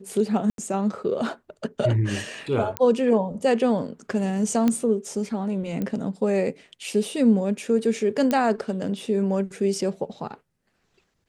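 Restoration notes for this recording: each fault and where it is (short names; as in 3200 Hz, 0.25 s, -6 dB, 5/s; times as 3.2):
0.5–0.58 gap 82 ms
2.77 pop -10 dBFS
4.68 pop -10 dBFS
5.82 pop -17 dBFS
8.31 pop -10 dBFS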